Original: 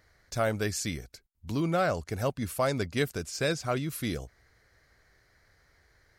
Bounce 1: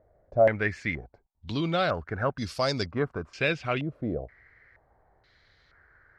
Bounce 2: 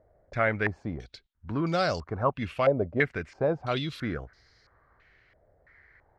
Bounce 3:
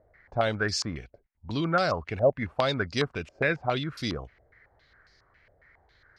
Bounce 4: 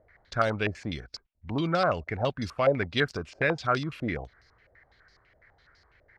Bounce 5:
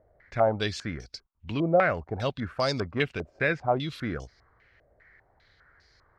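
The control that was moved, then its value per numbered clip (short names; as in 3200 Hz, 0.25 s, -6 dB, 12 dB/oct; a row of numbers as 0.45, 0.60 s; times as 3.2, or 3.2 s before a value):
stepped low-pass, rate: 2.1, 3, 7.3, 12, 5 Hz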